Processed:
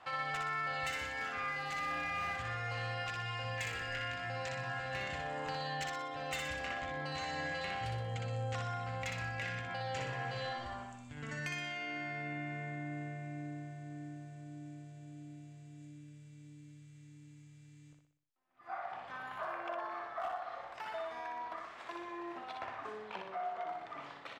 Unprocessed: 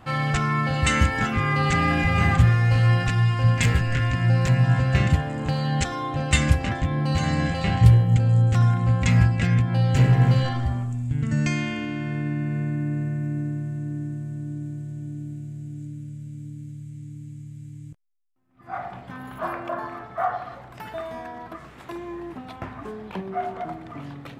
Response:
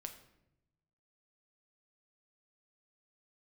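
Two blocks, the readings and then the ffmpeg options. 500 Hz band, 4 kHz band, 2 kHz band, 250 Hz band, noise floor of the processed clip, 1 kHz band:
−11.0 dB, −10.5 dB, −10.0 dB, −21.5 dB, −56 dBFS, −10.0 dB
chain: -filter_complex "[0:a]acrossover=split=480 7300:gain=0.0891 1 0.112[link_01][link_02][link_03];[link_01][link_02][link_03]amix=inputs=3:normalize=0,volume=20.5dB,asoftclip=hard,volume=-20.5dB,acompressor=threshold=-34dB:ratio=6,asplit=2[link_04][link_05];[link_05]aecho=0:1:61|122|183|244|305|366:0.631|0.309|0.151|0.0742|0.0364|0.0178[link_06];[link_04][link_06]amix=inputs=2:normalize=0,volume=-4.5dB"

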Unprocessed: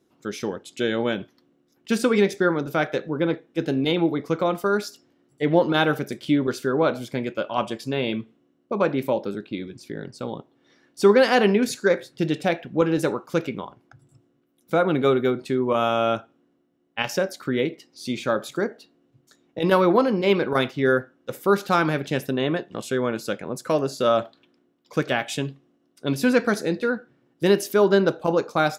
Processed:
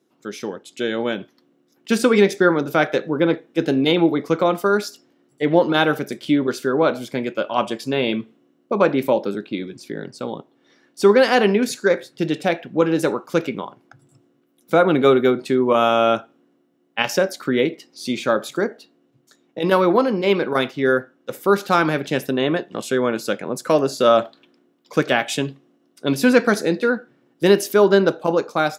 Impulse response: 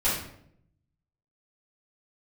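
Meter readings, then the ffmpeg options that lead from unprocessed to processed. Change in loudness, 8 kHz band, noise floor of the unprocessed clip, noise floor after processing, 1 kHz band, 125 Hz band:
+4.0 dB, +4.0 dB, −66 dBFS, −63 dBFS, +4.0 dB, +1.0 dB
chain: -af "highpass=160,dynaudnorm=framelen=610:gausssize=5:maxgain=8dB"

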